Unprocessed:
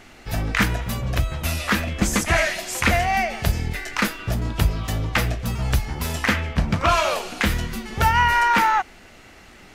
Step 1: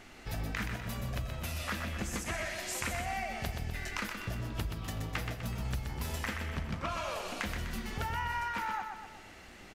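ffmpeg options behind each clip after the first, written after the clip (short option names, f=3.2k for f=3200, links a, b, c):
-filter_complex "[0:a]acompressor=threshold=-28dB:ratio=6,asplit=2[a][b];[b]aecho=0:1:125|250|375|500|625|750:0.501|0.251|0.125|0.0626|0.0313|0.0157[c];[a][c]amix=inputs=2:normalize=0,volume=-6.5dB"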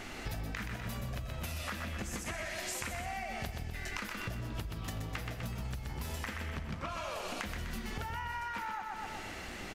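-af "acompressor=threshold=-44dB:ratio=12,volume=8.5dB"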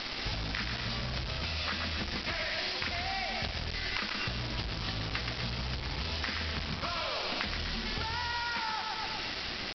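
-af "aresample=11025,acrusher=bits=6:mix=0:aa=0.000001,aresample=44100,crystalizer=i=3:c=0,volume=2dB"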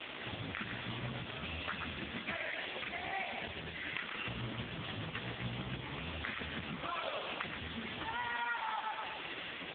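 -af "bandreject=f=50:t=h:w=6,bandreject=f=100:t=h:w=6,bandreject=f=150:t=h:w=6,bandreject=f=200:t=h:w=6,volume=1dB" -ar 8000 -c:a libopencore_amrnb -b:a 4750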